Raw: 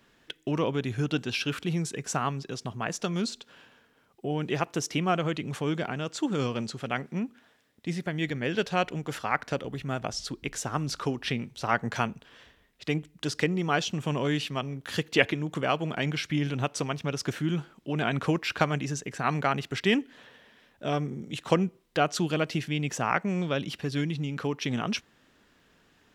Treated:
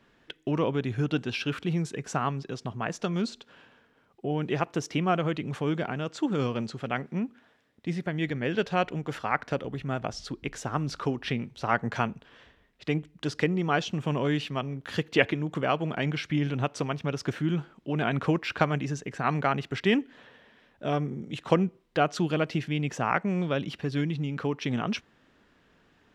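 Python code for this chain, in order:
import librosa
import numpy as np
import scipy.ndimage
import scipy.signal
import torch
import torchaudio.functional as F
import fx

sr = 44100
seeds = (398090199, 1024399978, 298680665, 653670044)

y = fx.lowpass(x, sr, hz=2700.0, slope=6)
y = F.gain(torch.from_numpy(y), 1.0).numpy()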